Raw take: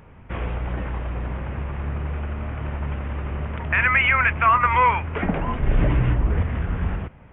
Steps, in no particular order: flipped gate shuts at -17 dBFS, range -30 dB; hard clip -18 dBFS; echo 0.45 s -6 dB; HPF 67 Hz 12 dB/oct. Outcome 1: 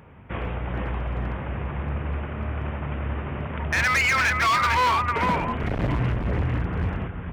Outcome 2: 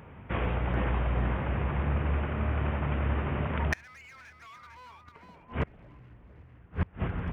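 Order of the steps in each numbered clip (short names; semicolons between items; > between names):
echo > hard clip > flipped gate > HPF; HPF > hard clip > echo > flipped gate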